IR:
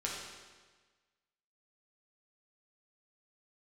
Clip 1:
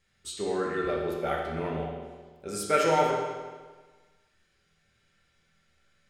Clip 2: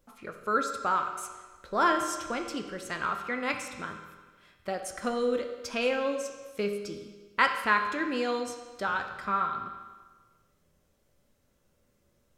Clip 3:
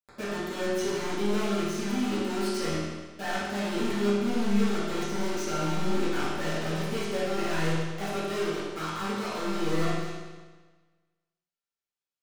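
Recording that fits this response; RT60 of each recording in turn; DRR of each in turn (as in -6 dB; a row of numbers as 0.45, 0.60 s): 1; 1.4, 1.4, 1.4 s; -4.0, 4.0, -13.0 dB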